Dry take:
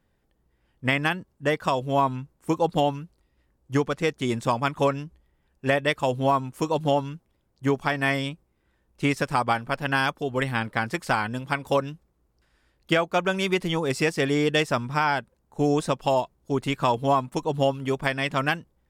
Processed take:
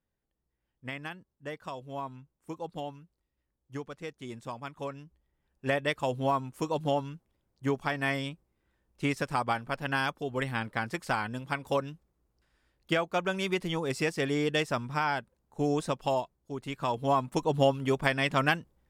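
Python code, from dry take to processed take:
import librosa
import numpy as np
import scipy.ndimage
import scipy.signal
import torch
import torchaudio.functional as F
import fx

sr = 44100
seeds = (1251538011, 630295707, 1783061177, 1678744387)

y = fx.gain(x, sr, db=fx.line((4.81, -15.5), (5.72, -6.0), (16.13, -6.0), (16.56, -12.5), (17.35, -1.5)))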